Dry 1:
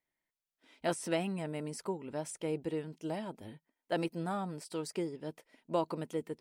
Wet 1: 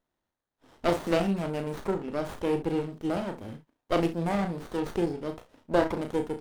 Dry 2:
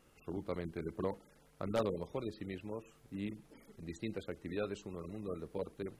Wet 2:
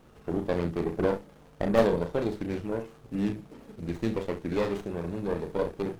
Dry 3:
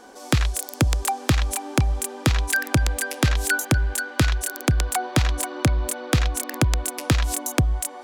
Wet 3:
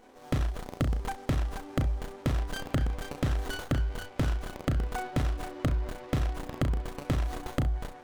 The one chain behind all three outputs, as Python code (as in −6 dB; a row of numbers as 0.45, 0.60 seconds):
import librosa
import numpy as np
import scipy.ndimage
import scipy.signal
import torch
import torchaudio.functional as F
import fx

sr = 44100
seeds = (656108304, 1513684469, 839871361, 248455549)

p1 = x + fx.room_early_taps(x, sr, ms=(35, 66), db=(-6.5, -13.5), dry=0)
p2 = fx.running_max(p1, sr, window=17)
y = p2 * 10.0 ** (-30 / 20.0) / np.sqrt(np.mean(np.square(p2)))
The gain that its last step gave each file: +7.5, +11.0, −9.0 decibels